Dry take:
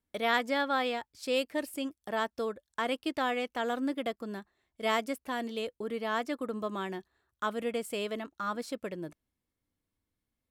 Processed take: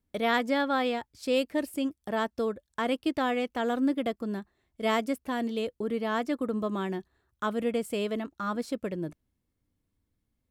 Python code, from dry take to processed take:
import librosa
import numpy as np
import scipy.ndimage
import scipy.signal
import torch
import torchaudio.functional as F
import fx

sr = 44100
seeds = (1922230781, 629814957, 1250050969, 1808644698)

y = fx.low_shelf(x, sr, hz=380.0, db=9.5)